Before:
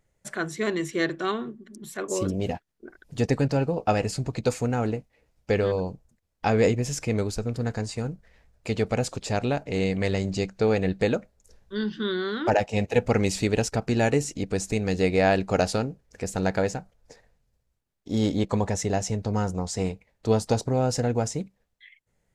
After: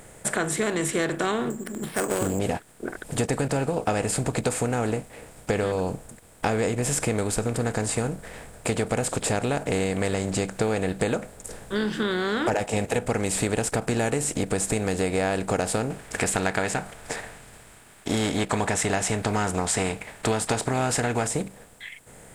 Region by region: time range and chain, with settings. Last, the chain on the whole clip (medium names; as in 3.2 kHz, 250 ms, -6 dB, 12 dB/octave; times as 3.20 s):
1.50–2.39 s: self-modulated delay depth 0.17 ms + careless resampling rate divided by 6×, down filtered, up hold
15.90–21.27 s: peaking EQ 2.2 kHz +13 dB 2.8 oct + band-stop 510 Hz, Q 5.2
whole clip: spectral levelling over time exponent 0.6; resonant high shelf 7.1 kHz +6.5 dB, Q 3; compression, threshold -22 dBFS; trim +1 dB